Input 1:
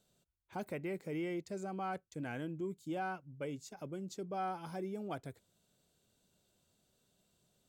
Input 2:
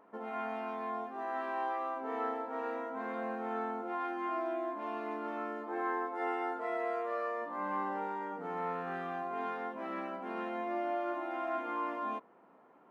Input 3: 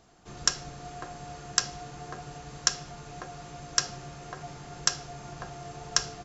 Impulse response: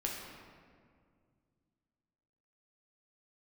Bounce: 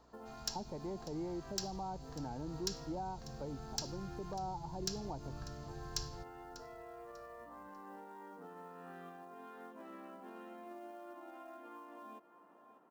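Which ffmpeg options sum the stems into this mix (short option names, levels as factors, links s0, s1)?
-filter_complex "[0:a]lowpass=f=900:t=q:w=10,aeval=exprs='val(0)+0.000398*(sin(2*PI*60*n/s)+sin(2*PI*2*60*n/s)/2+sin(2*PI*3*60*n/s)/3+sin(2*PI*4*60*n/s)/4+sin(2*PI*5*60*n/s)/5)':c=same,volume=0.75,asplit=2[s0][s1];[1:a]bandreject=f=2200:w=5.9,acrusher=bits=7:mode=log:mix=0:aa=0.000001,alimiter=level_in=3.35:limit=0.0631:level=0:latency=1:release=286,volume=0.299,volume=0.531,asplit=2[s2][s3];[s3]volume=0.168[s4];[2:a]asubboost=boost=10:cutoff=110,asoftclip=type=hard:threshold=0.168,equalizer=f=4400:w=2.7:g=9,volume=0.168,asplit=3[s5][s6][s7];[s6]volume=0.168[s8];[s7]volume=0.158[s9];[s1]apad=whole_len=569170[s10];[s2][s10]sidechaincompress=threshold=0.00794:ratio=8:attack=16:release=106[s11];[3:a]atrim=start_sample=2205[s12];[s8][s12]afir=irnorm=-1:irlink=0[s13];[s4][s9]amix=inputs=2:normalize=0,aecho=0:1:594|1188|1782|2376:1|0.29|0.0841|0.0244[s14];[s0][s11][s5][s13][s14]amix=inputs=5:normalize=0,acrossover=split=420|3000[s15][s16][s17];[s16]acompressor=threshold=0.00178:ratio=2[s18];[s15][s18][s17]amix=inputs=3:normalize=0"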